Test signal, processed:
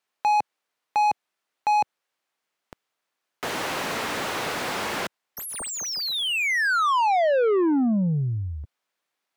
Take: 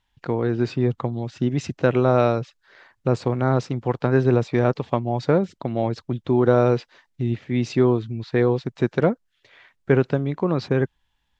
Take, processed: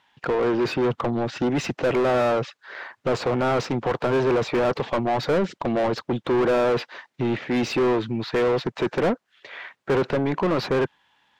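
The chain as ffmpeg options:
-filter_complex "[0:a]highpass=110,asplit=2[a][b];[b]highpass=f=720:p=1,volume=33dB,asoftclip=type=tanh:threshold=-4dB[c];[a][c]amix=inputs=2:normalize=0,lowpass=f=1.6k:p=1,volume=-6dB,volume=-9dB"

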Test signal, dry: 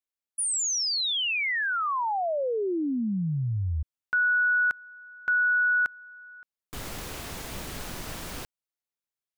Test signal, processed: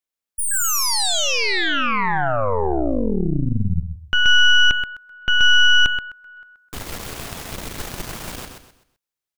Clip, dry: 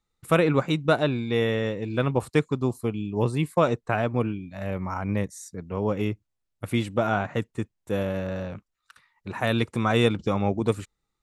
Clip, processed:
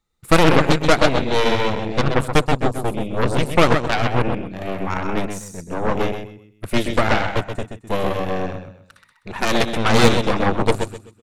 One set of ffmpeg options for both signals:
-af "aecho=1:1:128|256|384|512:0.531|0.17|0.0544|0.0174,aeval=exprs='0.501*(cos(1*acos(clip(val(0)/0.501,-1,1)))-cos(1*PI/2))+0.141*(cos(8*acos(clip(val(0)/0.501,-1,1)))-cos(8*PI/2))':c=same,volume=3.5dB"

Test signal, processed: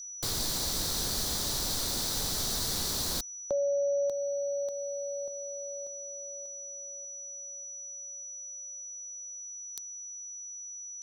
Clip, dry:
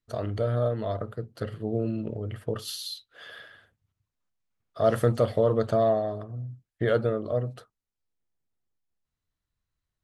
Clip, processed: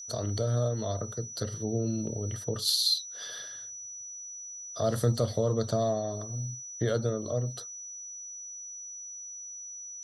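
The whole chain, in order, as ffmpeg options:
-filter_complex "[0:a]aeval=exprs='val(0)+0.00316*sin(2*PI*5900*n/s)':c=same,acrossover=split=230[a][b];[b]acompressor=threshold=-37dB:ratio=1.5[c];[a][c]amix=inputs=2:normalize=0,highshelf=f=3.3k:t=q:w=3:g=7.5"

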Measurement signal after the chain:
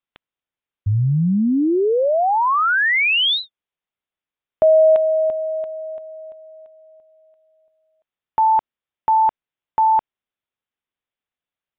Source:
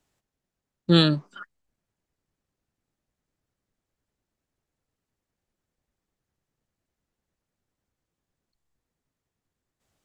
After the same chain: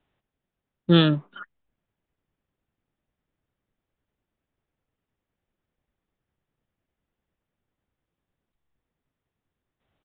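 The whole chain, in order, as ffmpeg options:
-af "aresample=8000,aresample=44100,volume=1dB"

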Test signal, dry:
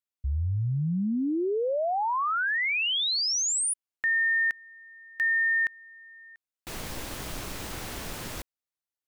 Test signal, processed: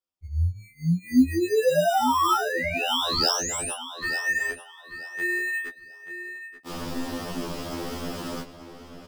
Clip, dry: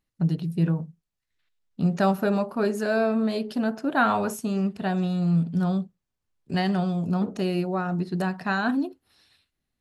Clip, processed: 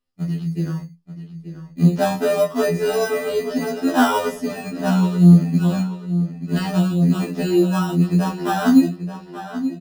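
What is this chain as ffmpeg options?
-filter_complex "[0:a]equalizer=f=100:t=o:w=0.33:g=-5,equalizer=f=250:t=o:w=0.33:g=4,equalizer=f=1.25k:t=o:w=0.33:g=8,equalizer=f=3.15k:t=o:w=0.33:g=5,equalizer=f=5k:t=o:w=0.33:g=9,acrossover=split=130|890[a][b][c];[b]dynaudnorm=f=830:g=3:m=9dB[d];[a][d][c]amix=inputs=3:normalize=0,flanger=delay=19:depth=7.5:speed=0.71,asplit=2[e][f];[f]acrusher=samples=20:mix=1:aa=0.000001,volume=-3.5dB[g];[e][g]amix=inputs=2:normalize=0,asplit=2[h][i];[i]adelay=883,lowpass=f=5k:p=1,volume=-11dB,asplit=2[j][k];[k]adelay=883,lowpass=f=5k:p=1,volume=0.27,asplit=2[l][m];[m]adelay=883,lowpass=f=5k:p=1,volume=0.27[n];[h][j][l][n]amix=inputs=4:normalize=0,afftfilt=real='re*2*eq(mod(b,4),0)':imag='im*2*eq(mod(b,4),0)':win_size=2048:overlap=0.75"

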